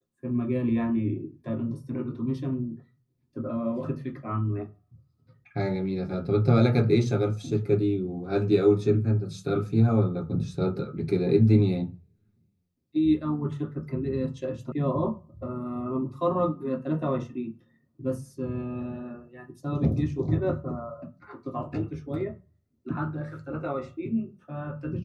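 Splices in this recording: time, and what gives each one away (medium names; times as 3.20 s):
14.72 s: sound stops dead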